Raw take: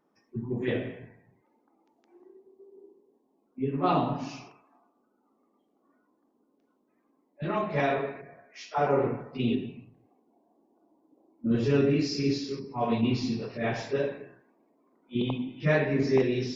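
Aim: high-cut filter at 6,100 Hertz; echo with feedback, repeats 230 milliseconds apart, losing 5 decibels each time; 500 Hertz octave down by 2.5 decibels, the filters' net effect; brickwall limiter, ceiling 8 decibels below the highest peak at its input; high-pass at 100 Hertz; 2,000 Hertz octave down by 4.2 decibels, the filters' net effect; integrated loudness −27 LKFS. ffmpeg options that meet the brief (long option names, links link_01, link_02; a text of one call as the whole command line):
ffmpeg -i in.wav -af "highpass=100,lowpass=6100,equalizer=frequency=500:width_type=o:gain=-3,equalizer=frequency=2000:width_type=o:gain=-5,alimiter=limit=-20dB:level=0:latency=1,aecho=1:1:230|460|690|920|1150|1380|1610:0.562|0.315|0.176|0.0988|0.0553|0.031|0.0173,volume=4.5dB" out.wav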